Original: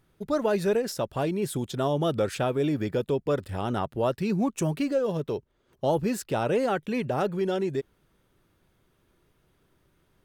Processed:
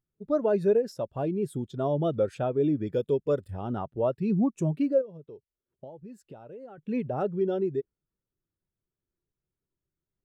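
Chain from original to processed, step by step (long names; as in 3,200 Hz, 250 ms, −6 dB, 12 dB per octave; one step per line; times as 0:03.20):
0:02.86–0:03.50: high-shelf EQ 2,600 Hz → 4,700 Hz +10 dB
0:05.01–0:06.78: downward compressor 8 to 1, threshold −35 dBFS, peak gain reduction 15 dB
every bin expanded away from the loudest bin 1.5 to 1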